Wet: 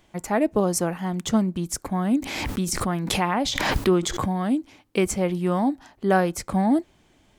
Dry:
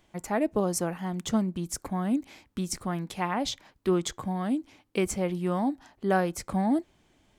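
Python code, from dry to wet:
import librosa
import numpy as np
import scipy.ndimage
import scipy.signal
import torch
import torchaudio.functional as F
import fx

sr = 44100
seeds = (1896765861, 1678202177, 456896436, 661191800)

y = fx.pre_swell(x, sr, db_per_s=31.0, at=(2.14, 4.33))
y = y * librosa.db_to_amplitude(5.0)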